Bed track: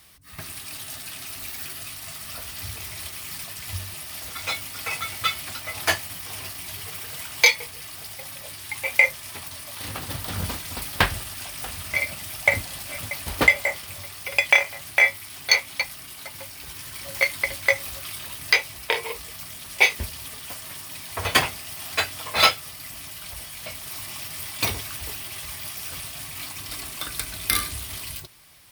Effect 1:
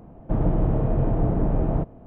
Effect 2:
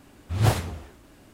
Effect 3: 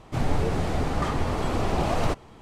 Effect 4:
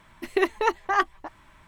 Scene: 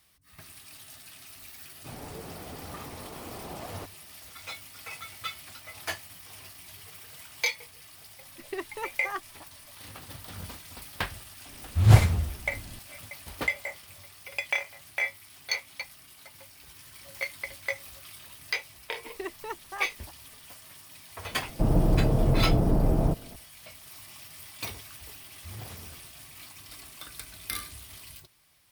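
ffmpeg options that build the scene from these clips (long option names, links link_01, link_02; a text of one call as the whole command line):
ffmpeg -i bed.wav -i cue0.wav -i cue1.wav -i cue2.wav -i cue3.wav -filter_complex "[4:a]asplit=2[link_01][link_02];[2:a]asplit=2[link_03][link_04];[0:a]volume=-12dB[link_05];[3:a]highpass=frequency=150:poles=1[link_06];[link_03]asubboost=boost=11.5:cutoff=170[link_07];[link_04]acompressor=threshold=-25dB:ratio=6:attack=3.2:release=140:knee=1:detection=peak[link_08];[link_06]atrim=end=2.41,asetpts=PTS-STARTPTS,volume=-14dB,afade=type=in:duration=0.004:curve=hsin,afade=type=out:start_time=2.406:duration=0.004:curve=hsin,adelay=1720[link_09];[link_01]atrim=end=1.67,asetpts=PTS-STARTPTS,volume=-13dB,afade=type=in:duration=0.004:curve=hsin,afade=type=out:start_time=1.666:duration=0.004:curve=hsin,adelay=8160[link_10];[link_07]atrim=end=1.33,asetpts=PTS-STARTPTS,afade=type=in:duration=0.004:curve=hsin,afade=type=out:start_time=1.326:duration=0.004:curve=hsin,adelay=505386S[link_11];[link_02]atrim=end=1.67,asetpts=PTS-STARTPTS,volume=-14.5dB,afade=type=in:duration=0.004:curve=hsin,afade=type=out:start_time=1.666:duration=0.004:curve=hsin,adelay=18830[link_12];[1:a]atrim=end=2.06,asetpts=PTS-STARTPTS,volume=-1dB,afade=type=in:duration=0.004:curve=hsin,afade=type=out:start_time=2.056:duration=0.004:curve=hsin,adelay=21300[link_13];[link_08]atrim=end=1.33,asetpts=PTS-STARTPTS,volume=-13.5dB,afade=type=in:duration=0.004:curve=hsin,afade=type=out:start_time=1.326:duration=0.004:curve=hsin,adelay=25150[link_14];[link_05][link_09][link_10][link_11][link_12][link_13][link_14]amix=inputs=7:normalize=0" out.wav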